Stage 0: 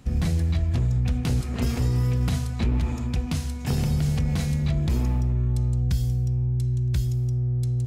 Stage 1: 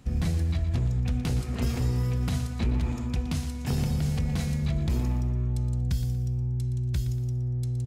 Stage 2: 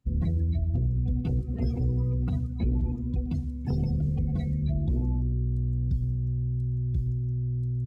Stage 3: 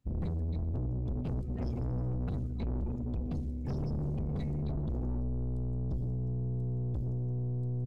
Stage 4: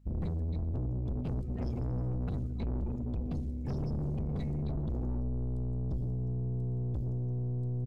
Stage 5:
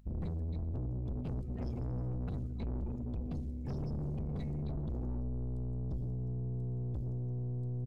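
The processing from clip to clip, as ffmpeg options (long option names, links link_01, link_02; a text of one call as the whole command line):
ffmpeg -i in.wav -af "aecho=1:1:118|236|354|472:0.224|0.0851|0.0323|0.0123,volume=-3dB" out.wav
ffmpeg -i in.wav -af "afftdn=noise_reduction=26:noise_floor=-33" out.wav
ffmpeg -i in.wav -af "aeval=exprs='(tanh(35.5*val(0)+0.35)-tanh(0.35))/35.5':channel_layout=same" out.wav
ffmpeg -i in.wav -af "aeval=exprs='val(0)+0.00126*(sin(2*PI*50*n/s)+sin(2*PI*2*50*n/s)/2+sin(2*PI*3*50*n/s)/3+sin(2*PI*4*50*n/s)/4+sin(2*PI*5*50*n/s)/5)':channel_layout=same" out.wav
ffmpeg -i in.wav -af "acompressor=mode=upward:threshold=-53dB:ratio=2.5,volume=-3.5dB" out.wav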